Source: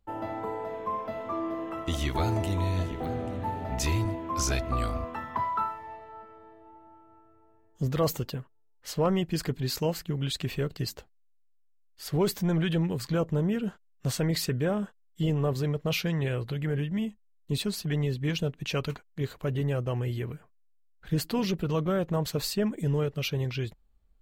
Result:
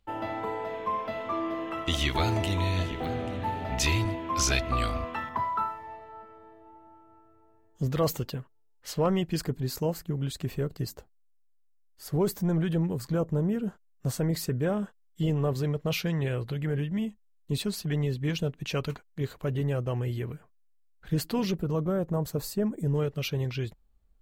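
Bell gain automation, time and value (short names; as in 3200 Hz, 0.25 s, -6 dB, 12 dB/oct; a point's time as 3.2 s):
bell 3000 Hz 1.8 oct
+8.5 dB
from 5.29 s -0.5 dB
from 9.41 s -9.5 dB
from 14.63 s -2 dB
from 21.58 s -13.5 dB
from 22.95 s -2 dB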